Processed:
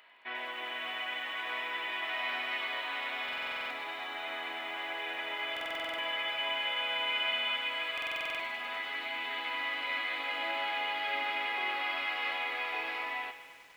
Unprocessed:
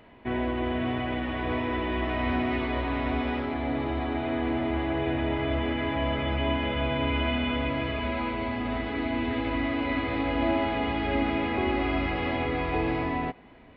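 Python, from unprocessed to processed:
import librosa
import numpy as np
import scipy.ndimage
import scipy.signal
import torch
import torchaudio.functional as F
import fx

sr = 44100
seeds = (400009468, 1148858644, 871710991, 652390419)

y = scipy.signal.sosfilt(scipy.signal.butter(2, 1200.0, 'highpass', fs=sr, output='sos'), x)
y = fx.high_shelf(y, sr, hz=2100.0, db=5.0)
y = fx.buffer_glitch(y, sr, at_s=(3.24, 5.52, 7.93), block=2048, repeats=9)
y = fx.echo_crushed(y, sr, ms=99, feedback_pct=80, bits=9, wet_db=-12.0)
y = y * librosa.db_to_amplitude(-1.5)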